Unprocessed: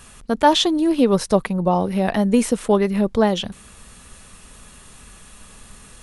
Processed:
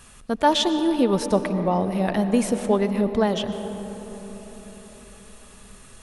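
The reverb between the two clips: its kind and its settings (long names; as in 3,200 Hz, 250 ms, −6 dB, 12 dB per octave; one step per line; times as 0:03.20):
comb and all-pass reverb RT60 4.6 s, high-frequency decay 0.3×, pre-delay 75 ms, DRR 9 dB
level −4 dB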